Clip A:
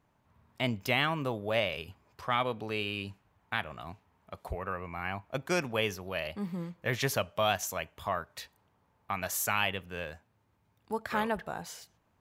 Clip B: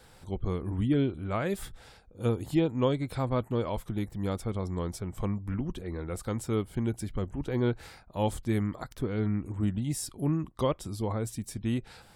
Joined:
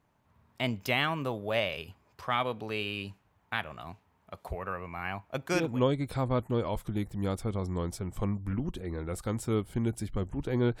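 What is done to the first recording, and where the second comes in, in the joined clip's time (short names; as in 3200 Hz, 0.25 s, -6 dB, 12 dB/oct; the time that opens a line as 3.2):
clip A
5.65 switch to clip B from 2.66 s, crossfade 0.32 s equal-power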